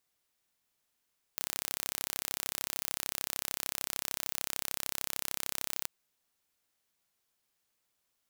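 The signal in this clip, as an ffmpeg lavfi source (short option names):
-f lavfi -i "aevalsrc='0.473*eq(mod(n,1324),0)':d=4.48:s=44100"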